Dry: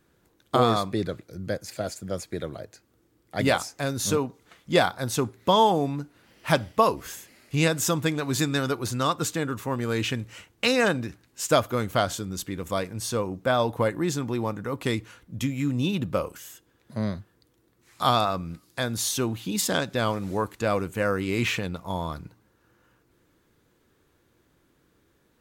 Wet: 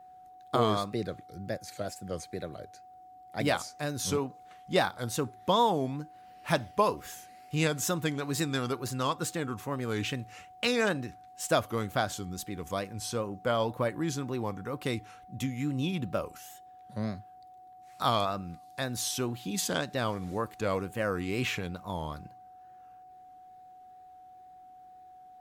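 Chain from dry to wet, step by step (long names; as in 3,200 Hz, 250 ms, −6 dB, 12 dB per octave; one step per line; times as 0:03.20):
tape wow and flutter 120 cents
steady tone 740 Hz −44 dBFS
level −5.5 dB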